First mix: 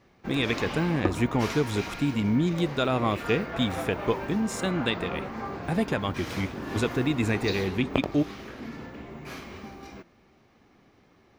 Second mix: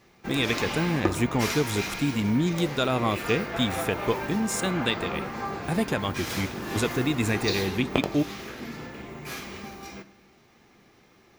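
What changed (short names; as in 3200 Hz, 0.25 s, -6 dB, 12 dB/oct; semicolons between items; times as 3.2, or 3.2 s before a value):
background: send on; master: add high shelf 6300 Hz +11.5 dB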